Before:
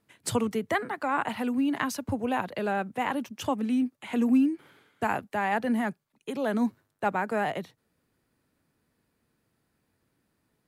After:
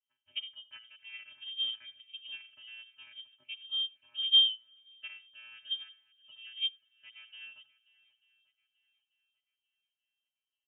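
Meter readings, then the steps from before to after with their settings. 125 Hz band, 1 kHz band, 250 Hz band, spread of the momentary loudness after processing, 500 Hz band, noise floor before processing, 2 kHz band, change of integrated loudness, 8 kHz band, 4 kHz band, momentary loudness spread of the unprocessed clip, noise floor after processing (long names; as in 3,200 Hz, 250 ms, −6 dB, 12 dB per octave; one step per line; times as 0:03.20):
below −35 dB, below −35 dB, below −40 dB, 24 LU, below −40 dB, −76 dBFS, −15.5 dB, −1.5 dB, below −35 dB, +15.5 dB, 6 LU, below −85 dBFS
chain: channel vocoder with a chord as carrier bare fifth, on A#3
single-tap delay 80 ms −16 dB
voice inversion scrambler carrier 3,400 Hz
on a send: feedback echo with a long and a short gap by turns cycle 888 ms, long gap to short 1.5 to 1, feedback 35%, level −19.5 dB
on the sum: expander for the loud parts 2.5 to 1, over −31 dBFS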